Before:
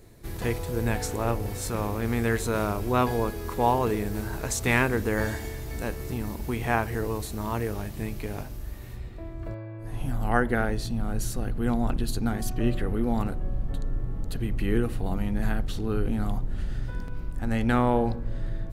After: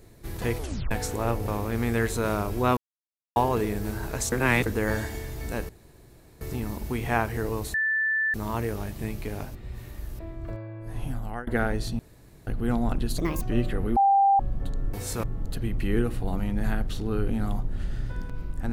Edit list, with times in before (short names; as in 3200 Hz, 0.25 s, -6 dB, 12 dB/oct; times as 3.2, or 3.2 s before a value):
0.58 tape stop 0.33 s
1.48–1.78 move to 14.02
3.07–3.66 mute
4.62–4.96 reverse
5.99 insert room tone 0.72 s
7.32 add tone 1760 Hz -22 dBFS 0.60 s
8.53–9.17 reverse
9.98–10.45 fade out, to -22.5 dB
10.97–11.45 room tone
12.16–12.5 speed 145%
13.05–13.48 bleep 791 Hz -16 dBFS